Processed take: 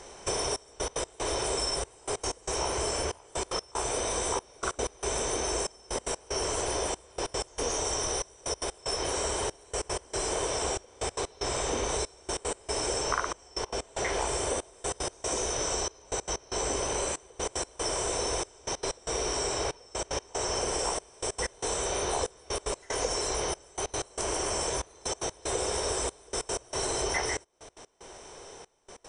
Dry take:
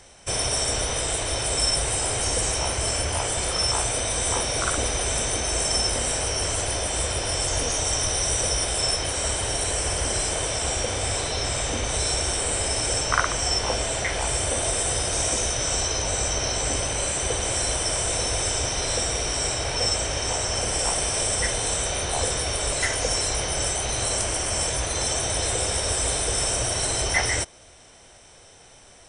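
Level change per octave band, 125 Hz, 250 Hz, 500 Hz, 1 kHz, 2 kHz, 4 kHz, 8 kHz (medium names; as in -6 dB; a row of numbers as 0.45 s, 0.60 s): -12.0 dB, -4.0 dB, -3.0 dB, -4.0 dB, -9.0 dB, -9.5 dB, -9.0 dB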